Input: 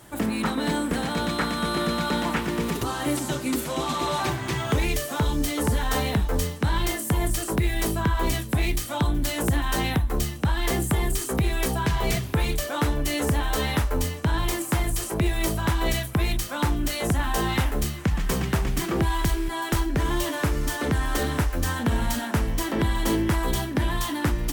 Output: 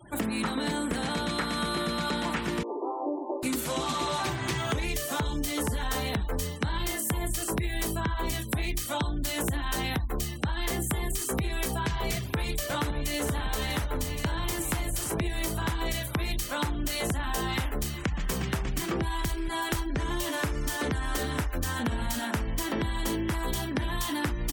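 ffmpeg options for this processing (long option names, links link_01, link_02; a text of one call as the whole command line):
ffmpeg -i in.wav -filter_complex "[0:a]asettb=1/sr,asplit=3[link_01][link_02][link_03];[link_01]atrim=end=2.634[link_04];[link_02]atrim=start=2.63:end=3.43,asetpts=PTS-STARTPTS,afade=type=in:duration=0.004:curve=qsin,afade=type=out:start_time=0.796:duration=0.004:curve=qsin,asuperpass=centerf=550:order=12:qfactor=0.77[link_05];[link_03]atrim=start=3.426[link_06];[link_04][link_05]acrossfade=duration=0.004:curve1=hsin:curve2=qsin[link_07];[link_07][link_06]acrossfade=duration=0.004:curve1=qsin:curve2=hsin,asplit=2[link_08][link_09];[link_09]afade=type=in:start_time=12.13:duration=0.01,afade=type=out:start_time=13.22:duration=0.01,aecho=0:1:560|1120|1680|2240|2800|3360|3920|4480|5040|5600|6160|6720:0.334965|0.267972|0.214378|0.171502|0.137202|0.109761|0.0878092|0.0702473|0.0561979|0.0449583|0.0359666|0.0287733[link_10];[link_08][link_10]amix=inputs=2:normalize=0,highshelf=frequency=2100:gain=4,acompressor=threshold=-26dB:ratio=10,afftfilt=real='re*gte(hypot(re,im),0.00631)':imag='im*gte(hypot(re,im),0.00631)':win_size=1024:overlap=0.75" out.wav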